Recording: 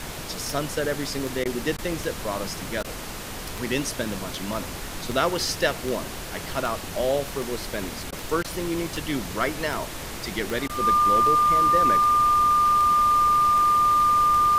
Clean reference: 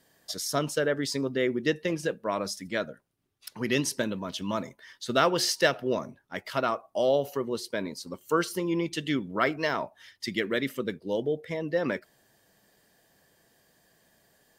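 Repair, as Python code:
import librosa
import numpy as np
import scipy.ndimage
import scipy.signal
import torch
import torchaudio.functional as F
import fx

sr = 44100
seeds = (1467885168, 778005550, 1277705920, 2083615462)

y = fx.fix_declick_ar(x, sr, threshold=10.0)
y = fx.notch(y, sr, hz=1200.0, q=30.0)
y = fx.fix_interpolate(y, sr, at_s=(1.44, 1.77, 2.83, 8.11, 8.43, 10.68), length_ms=13.0)
y = fx.noise_reduce(y, sr, print_start_s=2.82, print_end_s=3.32, reduce_db=30.0)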